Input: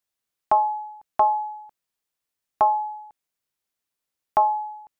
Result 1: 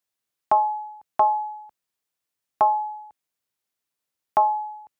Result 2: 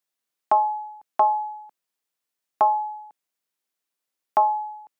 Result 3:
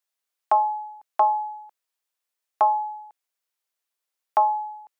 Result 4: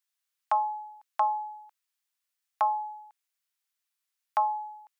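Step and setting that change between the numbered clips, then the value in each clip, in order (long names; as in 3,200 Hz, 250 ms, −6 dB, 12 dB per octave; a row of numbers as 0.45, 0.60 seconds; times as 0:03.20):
high-pass filter, corner frequency: 63, 190, 470, 1,200 Hertz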